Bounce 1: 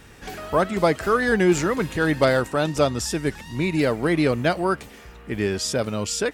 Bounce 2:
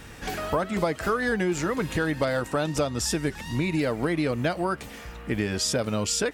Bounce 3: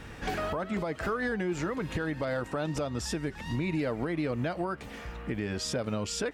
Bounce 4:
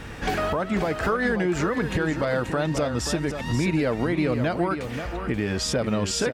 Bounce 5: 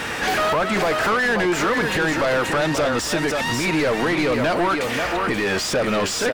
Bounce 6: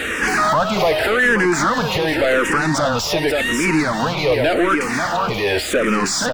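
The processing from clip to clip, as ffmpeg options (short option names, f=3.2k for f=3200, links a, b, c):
-af "bandreject=f=390:w=12,acompressor=threshold=-26dB:ratio=6,volume=3.5dB"
-af "highshelf=f=5.4k:g=-12,alimiter=limit=-22.5dB:level=0:latency=1:release=223"
-af "aecho=1:1:532:0.376,volume=7dB"
-filter_complex "[0:a]crystalizer=i=3:c=0,asplit=2[a][b];[b]highpass=f=720:p=1,volume=29dB,asoftclip=type=tanh:threshold=-5.5dB[c];[a][c]amix=inputs=2:normalize=0,lowpass=f=2k:p=1,volume=-6dB,volume=-5.5dB"
-filter_complex "[0:a]asplit=2[a][b];[b]afreqshift=-0.88[c];[a][c]amix=inputs=2:normalize=1,volume=6dB"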